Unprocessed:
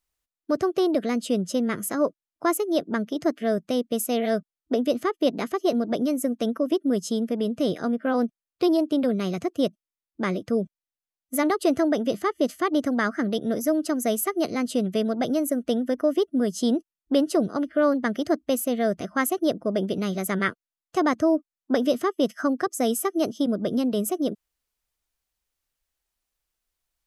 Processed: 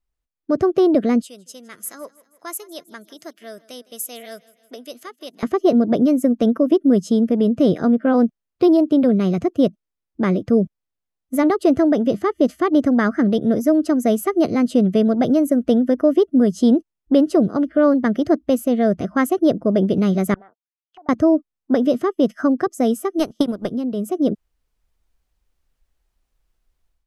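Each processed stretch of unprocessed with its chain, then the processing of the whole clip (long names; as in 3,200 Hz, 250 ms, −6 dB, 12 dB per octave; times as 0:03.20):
0:01.22–0:05.43: first difference + repeating echo 160 ms, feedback 58%, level −21.5 dB
0:20.34–0:21.09: envelope filter 780–3,800 Hz, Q 10, down, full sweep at −24.5 dBFS + downward compressor 3 to 1, threshold −52 dBFS
0:23.18–0:23.70: compressing power law on the bin magnitudes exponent 0.67 + transient designer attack +10 dB, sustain −10 dB
whole clip: spectral tilt −2.5 dB per octave; automatic gain control; level −4 dB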